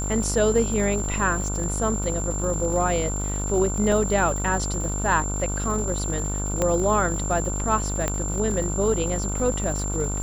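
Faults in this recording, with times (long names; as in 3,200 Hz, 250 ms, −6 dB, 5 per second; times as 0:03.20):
mains buzz 50 Hz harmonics 30 −28 dBFS
surface crackle 260 per second −33 dBFS
whistle 7,300 Hz −30 dBFS
0:03.92: drop-out 2.8 ms
0:06.62: click −10 dBFS
0:08.08: click −10 dBFS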